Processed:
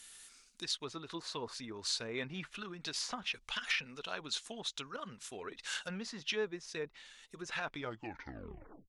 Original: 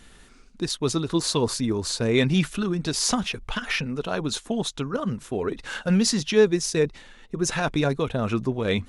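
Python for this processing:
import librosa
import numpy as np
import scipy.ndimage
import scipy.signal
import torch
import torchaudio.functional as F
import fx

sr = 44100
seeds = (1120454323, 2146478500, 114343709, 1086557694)

y = fx.tape_stop_end(x, sr, length_s=1.15)
y = fx.env_lowpass_down(y, sr, base_hz=1400.0, full_db=-20.0)
y = scipy.signal.lfilter([1.0, -0.97], [1.0], y)
y = F.gain(torch.from_numpy(y), 4.5).numpy()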